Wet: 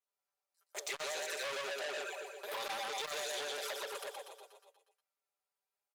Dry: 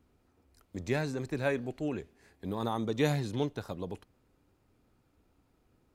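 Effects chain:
stylus tracing distortion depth 0.022 ms
noise gate −58 dBFS, range −30 dB
Butterworth high-pass 490 Hz 48 dB per octave
in parallel at −2 dB: downward compressor 10 to 1, threshold −44 dBFS, peak gain reduction 18 dB
on the sum: comb filter 5.1 ms, depth 85%
on a send: repeating echo 120 ms, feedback 58%, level −5 dB
on the sum: hard clipping −26 dBFS, distortion −12 dB
flanger swept by the level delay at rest 12 ms, full sweep at −32 dBFS
high-shelf EQ 4,300 Hz +11.5 dB
de-essing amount 70%
brickwall limiter −31.5 dBFS, peak gain reduction 9 dB
saturating transformer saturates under 2,800 Hz
level +5.5 dB

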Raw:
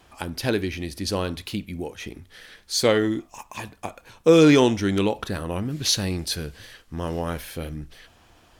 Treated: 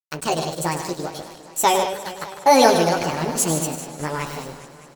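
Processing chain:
noise gate −41 dBFS, range −7 dB
chorus effect 2.5 Hz, delay 20 ms, depth 3 ms
on a send: loudspeakers that aren't time-aligned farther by 60 metres −9 dB, 89 metres −9 dB
on the sum: dead-zone distortion −44 dBFS
upward compression, threshold −38 dBFS
wrong playback speed 45 rpm record played at 78 rpm
feedback echo with a swinging delay time 203 ms, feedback 70%, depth 90 cents, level −15 dB
level +5.5 dB

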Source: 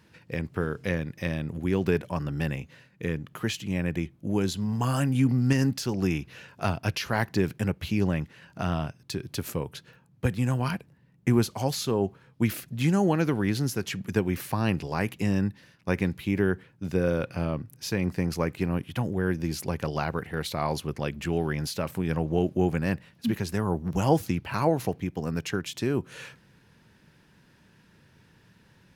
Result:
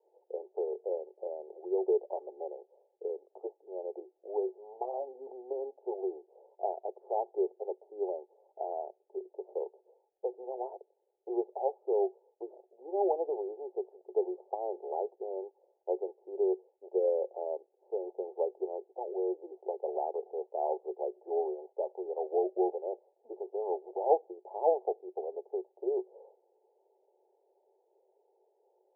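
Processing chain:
Chebyshev band-pass filter 370–860 Hz, order 5

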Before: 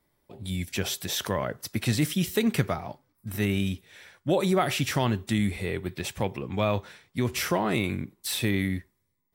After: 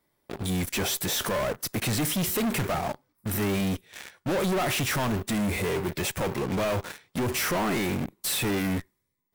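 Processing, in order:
low-shelf EQ 110 Hz −8.5 dB
in parallel at −12 dB: fuzz pedal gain 49 dB, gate −44 dBFS
on the sum: dynamic equaliser 3,900 Hz, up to −5 dB, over −39 dBFS, Q 0.76
soft clipping −23.5 dBFS, distortion −11 dB

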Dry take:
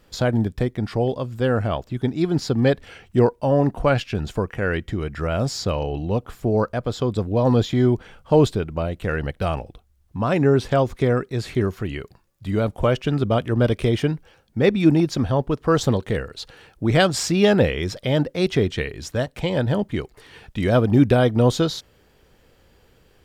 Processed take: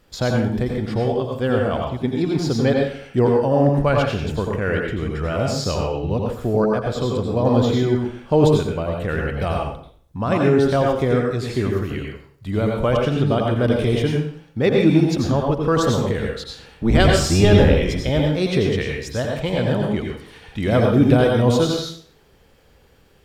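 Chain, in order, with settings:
0:16.40–0:18.10: sub-octave generator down 1 octave, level +3 dB
dense smooth reverb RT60 0.52 s, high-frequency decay 0.9×, pre-delay 75 ms, DRR 0 dB
level −1 dB

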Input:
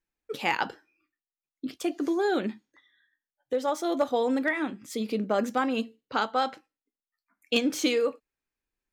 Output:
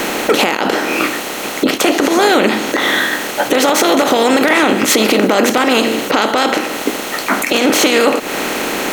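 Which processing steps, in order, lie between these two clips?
compressor on every frequency bin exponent 0.4
high-shelf EQ 11,000 Hz +10 dB
harmonic and percussive parts rebalanced percussive +7 dB
downward compressor 6 to 1, threshold −28 dBFS, peak gain reduction 17 dB
boost into a limiter +23 dB
level −1 dB

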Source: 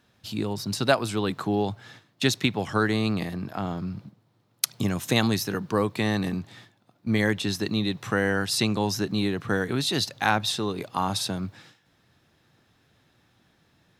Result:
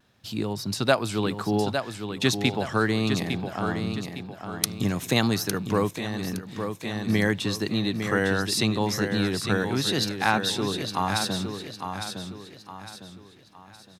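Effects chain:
repeating echo 860 ms, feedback 39%, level −7 dB
pitch vibrato 0.81 Hz 28 cents
0:05.89–0:06.49: output level in coarse steps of 10 dB

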